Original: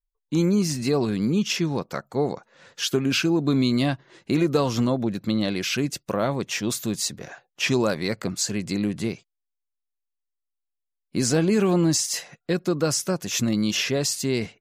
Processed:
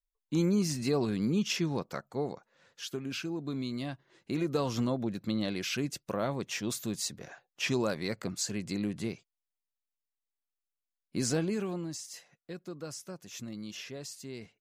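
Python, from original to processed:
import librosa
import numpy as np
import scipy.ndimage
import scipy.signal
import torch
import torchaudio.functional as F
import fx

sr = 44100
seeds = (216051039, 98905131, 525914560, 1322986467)

y = fx.gain(x, sr, db=fx.line((1.82, -6.5), (2.82, -14.5), (3.86, -14.5), (4.7, -8.0), (11.32, -8.0), (11.89, -18.5)))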